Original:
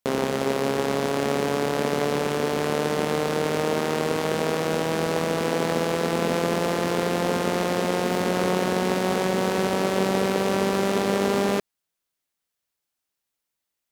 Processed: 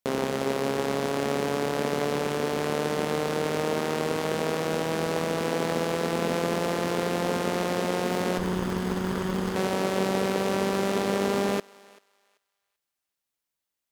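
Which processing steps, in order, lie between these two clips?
0:08.38–0:09.56: lower of the sound and its delayed copy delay 0.62 ms
feedback echo with a high-pass in the loop 387 ms, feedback 24%, high-pass 840 Hz, level −21 dB
level −3 dB

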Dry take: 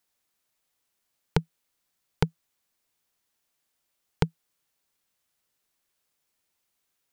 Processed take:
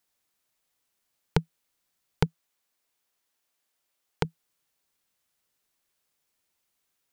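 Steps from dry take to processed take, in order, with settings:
0:02.26–0:04.25: bass and treble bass −7 dB, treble −1 dB

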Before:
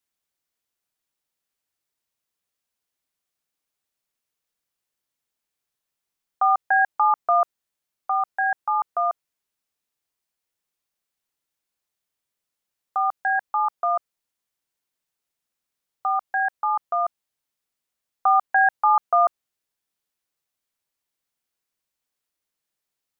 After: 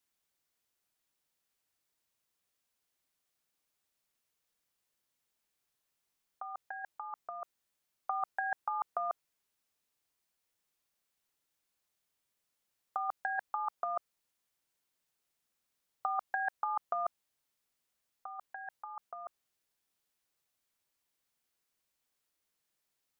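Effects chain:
compressor whose output falls as the input rises −26 dBFS, ratio −0.5
level −8 dB

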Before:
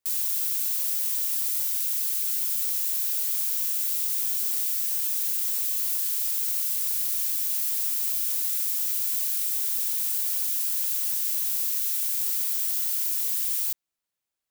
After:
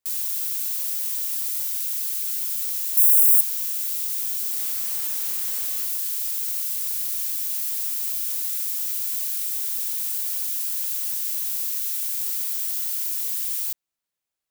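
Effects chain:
0:02.97–0:03.41: drawn EQ curve 340 Hz 0 dB, 540 Hz +9 dB, 1,200 Hz −29 dB, 3,800 Hz −21 dB, 8,700 Hz +12 dB
0:04.59–0:05.85: bit-depth reduction 6 bits, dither none

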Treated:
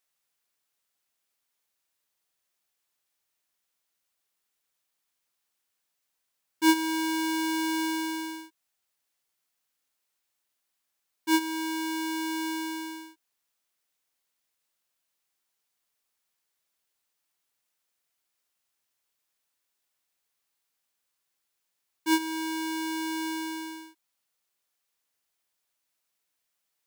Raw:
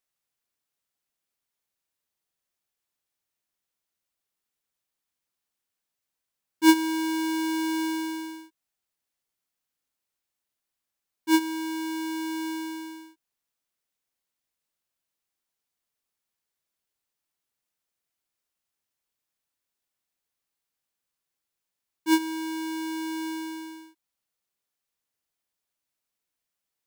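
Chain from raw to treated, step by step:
low-shelf EQ 390 Hz −7.5 dB
in parallel at −2 dB: downward compressor, threshold −36 dBFS, peak gain reduction 19 dB
on the sum: soft clipping −12 dBFS, distortion −20 dB

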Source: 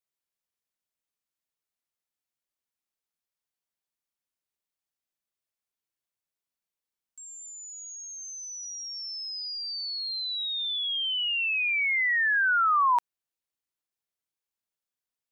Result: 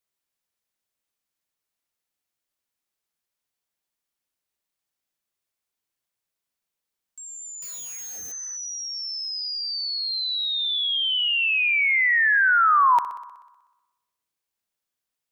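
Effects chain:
feedback echo with a high-pass in the loop 62 ms, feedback 68%, high-pass 160 Hz, level −14 dB
0:07.62–0:08.32: comparator with hysteresis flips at −51 dBFS
0:07.98–0:08.54: healed spectral selection 800–2,000 Hz before
level +5 dB

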